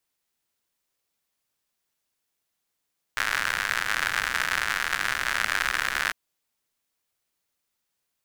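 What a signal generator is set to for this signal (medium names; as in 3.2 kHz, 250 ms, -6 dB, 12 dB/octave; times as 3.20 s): rain from filtered ticks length 2.95 s, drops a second 120, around 1.6 kHz, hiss -16.5 dB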